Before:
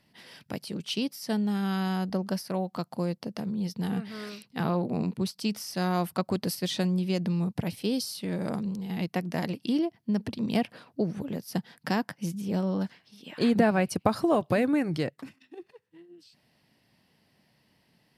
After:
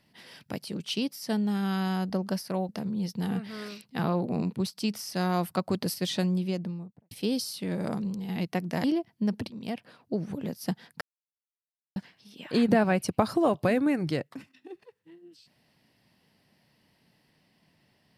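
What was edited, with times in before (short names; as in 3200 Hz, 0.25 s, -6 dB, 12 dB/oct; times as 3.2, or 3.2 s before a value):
2.69–3.3 cut
6.86–7.72 studio fade out
9.45–9.71 cut
10.37–11.29 fade in, from -13 dB
11.88–12.83 mute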